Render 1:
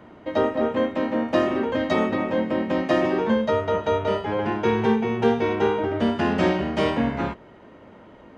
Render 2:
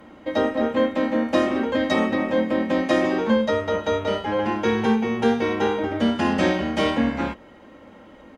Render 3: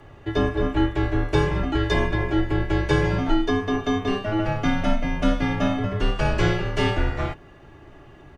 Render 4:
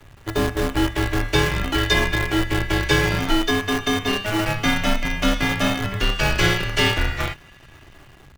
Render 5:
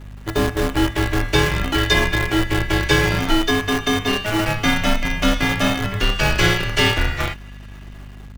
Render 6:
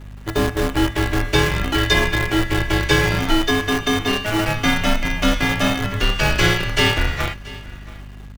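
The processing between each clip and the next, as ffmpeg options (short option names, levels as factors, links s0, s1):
-af "aemphasis=mode=production:type=cd,aecho=1:1:3.7:0.46"
-af "afreqshift=-200"
-filter_complex "[0:a]acrossover=split=210|1700[s0][s1][s2];[s1]acrusher=bits=5:dc=4:mix=0:aa=0.000001[s3];[s2]dynaudnorm=f=340:g=5:m=3.35[s4];[s0][s3][s4]amix=inputs=3:normalize=0"
-af "aeval=exprs='val(0)+0.0126*(sin(2*PI*50*n/s)+sin(2*PI*2*50*n/s)/2+sin(2*PI*3*50*n/s)/3+sin(2*PI*4*50*n/s)/4+sin(2*PI*5*50*n/s)/5)':c=same,volume=1.26"
-af "aecho=1:1:681:0.1"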